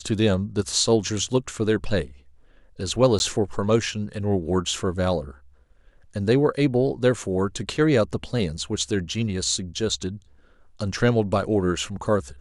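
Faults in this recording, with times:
3.19–3.2 gap

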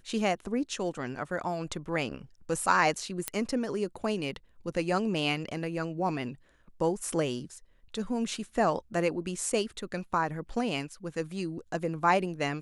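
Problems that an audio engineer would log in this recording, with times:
3.28 pop -11 dBFS

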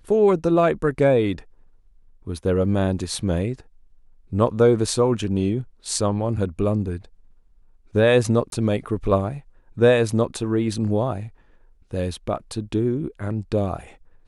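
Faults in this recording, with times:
8.5–8.52 gap 22 ms

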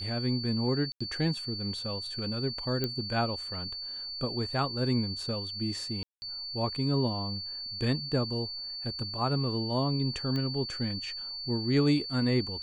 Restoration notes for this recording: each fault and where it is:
tone 4500 Hz -36 dBFS
0.92–1 gap 85 ms
2.84 pop -16 dBFS
6.03–6.22 gap 0.19 s
10.36 pop -22 dBFS

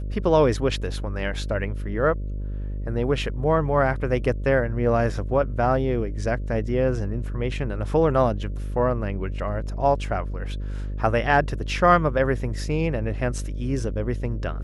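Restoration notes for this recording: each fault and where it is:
buzz 50 Hz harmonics 12 -29 dBFS

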